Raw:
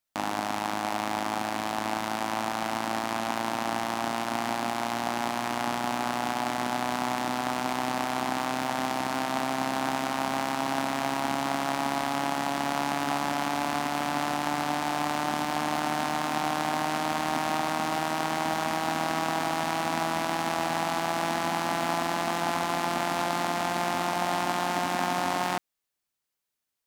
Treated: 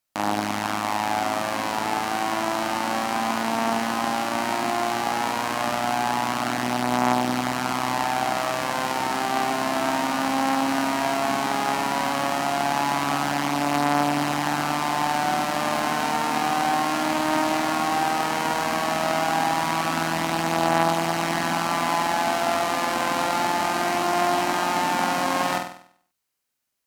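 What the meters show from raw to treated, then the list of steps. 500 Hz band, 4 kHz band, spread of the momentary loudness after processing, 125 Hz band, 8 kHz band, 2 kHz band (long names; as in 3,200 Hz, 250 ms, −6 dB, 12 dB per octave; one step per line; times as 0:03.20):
+5.0 dB, +4.5 dB, 3 LU, +4.5 dB, +5.0 dB, +5.0 dB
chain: notch filter 3,500 Hz, Q 21
hum removal 85.55 Hz, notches 3
pitch vibrato 10 Hz 7.1 cents
flutter between parallel walls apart 8.3 metres, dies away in 0.58 s
level +3.5 dB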